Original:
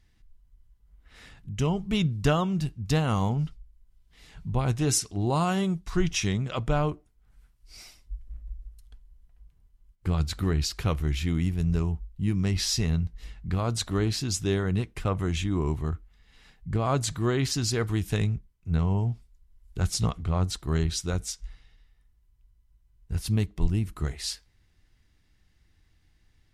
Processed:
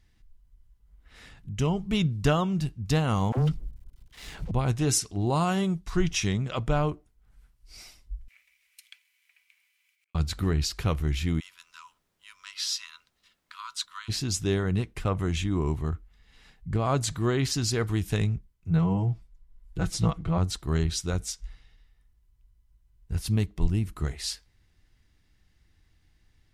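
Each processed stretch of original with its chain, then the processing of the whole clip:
3.32–4.51 sample leveller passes 3 + dispersion lows, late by 55 ms, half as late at 380 Hz
8.28–10.15 resonant high-pass 2300 Hz, resonance Q 8.9 + negative-ratio compressor -58 dBFS, ratio -0.5
11.39–14.08 expander -34 dBFS + rippled Chebyshev high-pass 960 Hz, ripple 6 dB + added noise pink -77 dBFS
18.7–20.38 high shelf 3300 Hz -7.5 dB + comb 6.1 ms, depth 86%
whole clip: dry

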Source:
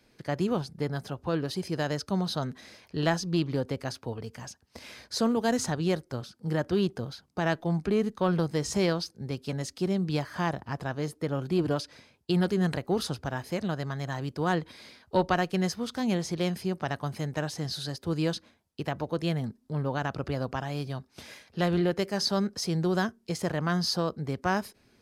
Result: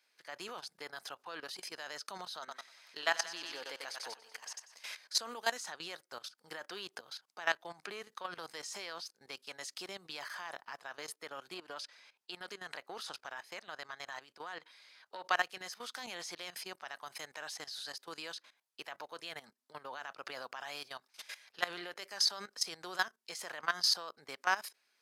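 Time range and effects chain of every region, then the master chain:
2.39–4.9 HPF 230 Hz 6 dB/oct + thinning echo 95 ms, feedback 59%, high-pass 360 Hz, level -5.5 dB
11.54–15.25 high shelf 7900 Hz -7 dB + compressor 2:1, threshold -30 dBFS
whole clip: HPF 1100 Hz 12 dB/oct; level quantiser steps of 16 dB; gain +4 dB

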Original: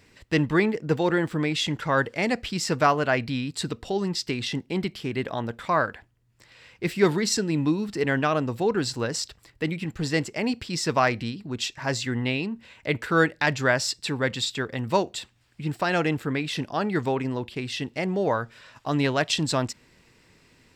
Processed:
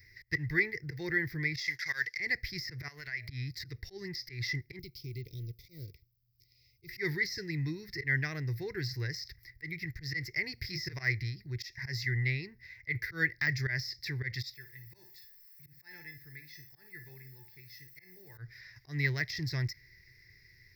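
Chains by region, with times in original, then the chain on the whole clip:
1.56–2.2 G.711 law mismatch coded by A + weighting filter ITU-R 468
2.88–3.29 tilt shelf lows -7.5 dB, about 740 Hz + de-hum 208.8 Hz, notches 3 + compressor 10:1, threshold -30 dBFS
4.79–6.89 G.711 law mismatch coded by A + inverse Chebyshev band-stop 720–1800 Hz + compressor 2:1, threshold -32 dBFS
10.55–11.03 high shelf 9200 Hz +2.5 dB + doubler 26 ms -4.5 dB
14.54–18.38 feedback echo 60 ms, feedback 33%, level -11.5 dB + requantised 8-bit, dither triangular + resonator 870 Hz, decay 0.29 s, mix 90%
whole clip: auto swell 0.12 s; EQ curve 130 Hz 0 dB, 230 Hz -26 dB, 370 Hz -11 dB, 560 Hz -25 dB, 1300 Hz -23 dB, 2000 Hz +8 dB, 2900 Hz -24 dB, 5200 Hz +4 dB, 8400 Hz -30 dB, 14000 Hz +11 dB; de-esser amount 90%

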